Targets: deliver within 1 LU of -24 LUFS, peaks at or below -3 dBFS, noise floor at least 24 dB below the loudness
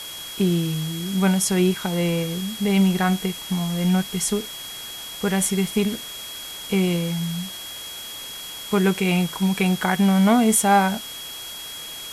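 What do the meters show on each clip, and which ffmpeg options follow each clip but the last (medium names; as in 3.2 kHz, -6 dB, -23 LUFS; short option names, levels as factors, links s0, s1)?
steady tone 3.3 kHz; tone level -35 dBFS; noise floor -35 dBFS; noise floor target -47 dBFS; loudness -22.5 LUFS; peak level -6.0 dBFS; loudness target -24.0 LUFS
-> -af "bandreject=f=3300:w=30"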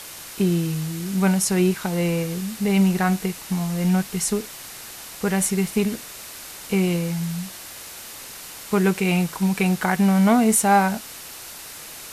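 steady tone not found; noise floor -39 dBFS; noise floor target -46 dBFS
-> -af "afftdn=nr=7:nf=-39"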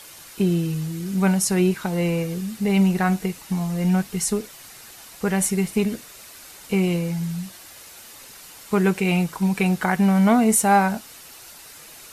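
noise floor -44 dBFS; noise floor target -46 dBFS
-> -af "afftdn=nr=6:nf=-44"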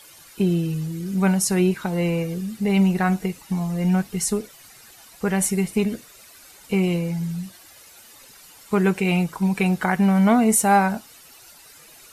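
noise floor -48 dBFS; loudness -21.5 LUFS; peak level -6.0 dBFS; loudness target -24.0 LUFS
-> -af "volume=0.75"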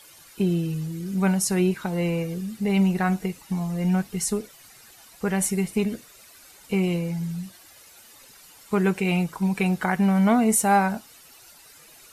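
loudness -24.0 LUFS; peak level -8.5 dBFS; noise floor -51 dBFS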